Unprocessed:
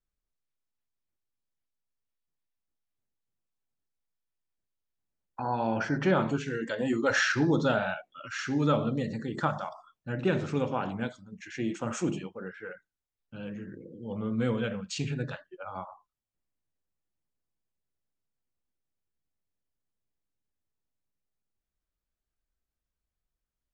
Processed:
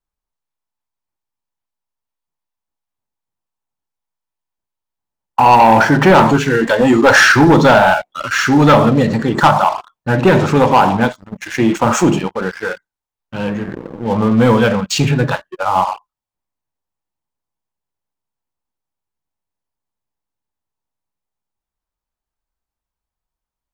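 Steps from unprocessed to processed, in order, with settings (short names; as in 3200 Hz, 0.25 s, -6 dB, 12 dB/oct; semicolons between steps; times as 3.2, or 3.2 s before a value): bell 910 Hz +11.5 dB 0.7 oct; sample leveller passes 3; gain +7 dB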